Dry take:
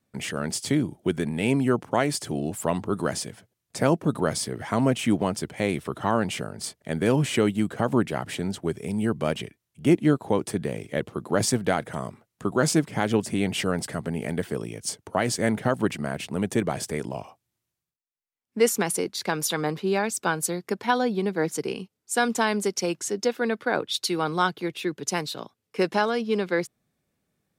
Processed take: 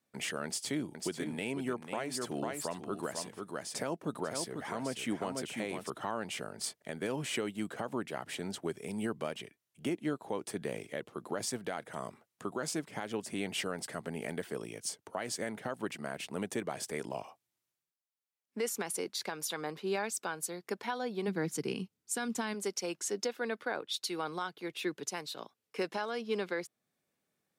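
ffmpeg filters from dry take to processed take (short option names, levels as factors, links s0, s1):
-filter_complex "[0:a]asettb=1/sr,asplit=3[s0][s1][s2];[s0]atrim=end=0.454[s3];[s1]atrim=start=0.45:end=5.9,asetpts=PTS-STARTPTS,afade=t=in:d=0.004:c=qsin,afade=t=out:st=5.446:d=0.004:c=qsin,aecho=1:1:495:0.447,atrim=end_sample=240345[s4];[s2]atrim=start=5.896[s5];[s3][s4]acrossfade=d=0.004:c1=hsin:c2=qsin[s6];[s6][s5]acrossfade=d=0.004:c1=qsin:c2=hsin,asplit=3[s7][s8][s9];[s7]afade=t=out:st=21.27:d=0.02[s10];[s8]asubboost=boost=4.5:cutoff=240,afade=t=in:st=21.27:d=0.02,afade=t=out:st=22.53:d=0.02[s11];[s9]afade=t=in:st=22.53:d=0.02[s12];[s10][s11][s12]amix=inputs=3:normalize=0,highpass=f=380:p=1,alimiter=limit=0.0944:level=0:latency=1:release=423,volume=0.668"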